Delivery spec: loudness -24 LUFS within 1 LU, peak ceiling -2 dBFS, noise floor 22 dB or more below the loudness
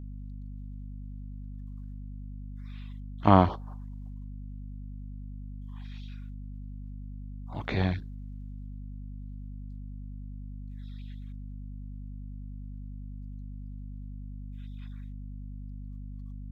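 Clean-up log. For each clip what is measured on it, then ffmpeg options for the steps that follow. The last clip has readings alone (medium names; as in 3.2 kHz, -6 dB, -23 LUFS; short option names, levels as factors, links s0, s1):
hum 50 Hz; highest harmonic 250 Hz; hum level -38 dBFS; loudness -36.0 LUFS; peak level -2.5 dBFS; loudness target -24.0 LUFS
-> -af "bandreject=f=50:t=h:w=4,bandreject=f=100:t=h:w=4,bandreject=f=150:t=h:w=4,bandreject=f=200:t=h:w=4,bandreject=f=250:t=h:w=4"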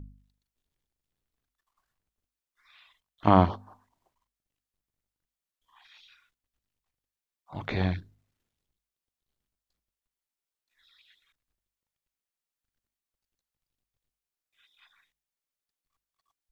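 hum not found; loudness -26.5 LUFS; peak level -3.5 dBFS; loudness target -24.0 LUFS
-> -af "volume=1.33,alimiter=limit=0.794:level=0:latency=1"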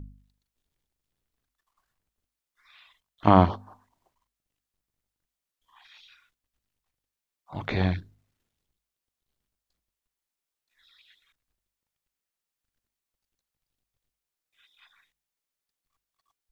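loudness -24.0 LUFS; peak level -2.0 dBFS; noise floor -88 dBFS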